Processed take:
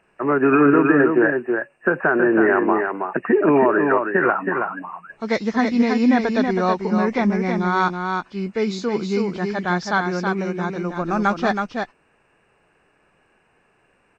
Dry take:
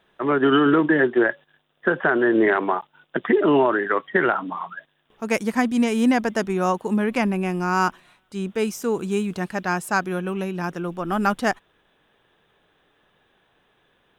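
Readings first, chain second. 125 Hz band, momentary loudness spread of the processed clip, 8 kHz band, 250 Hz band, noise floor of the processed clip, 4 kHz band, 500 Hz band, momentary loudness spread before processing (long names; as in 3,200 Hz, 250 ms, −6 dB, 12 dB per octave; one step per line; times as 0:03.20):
+3.0 dB, 10 LU, can't be measured, +3.0 dB, −62 dBFS, −1.0 dB, +2.5 dB, 11 LU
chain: hearing-aid frequency compression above 1,700 Hz 1.5 to 1
on a send: single-tap delay 323 ms −5 dB
on the sum: level +1.5 dB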